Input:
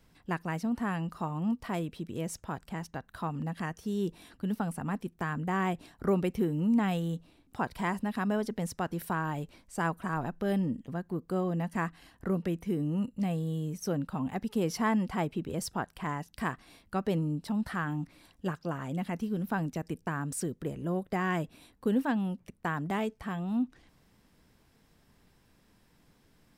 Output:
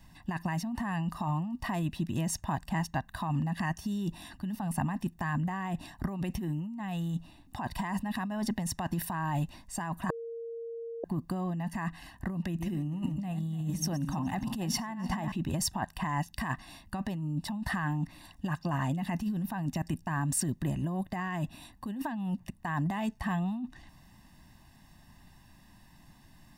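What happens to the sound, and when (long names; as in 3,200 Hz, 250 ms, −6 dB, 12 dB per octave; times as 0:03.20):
0:10.10–0:11.04: beep over 462 Hz −16.5 dBFS
0:12.43–0:15.32: feedback delay that plays each chunk backwards 147 ms, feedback 53%, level −12 dB
whole clip: comb filter 1.1 ms, depth 94%; compressor whose output falls as the input rises −32 dBFS, ratio −1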